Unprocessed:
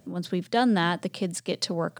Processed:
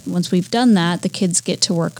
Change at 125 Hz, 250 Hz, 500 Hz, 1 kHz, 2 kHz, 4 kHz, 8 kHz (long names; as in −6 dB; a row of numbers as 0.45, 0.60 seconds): +12.0, +10.5, +6.5, +4.0, +4.0, +10.0, +17.5 decibels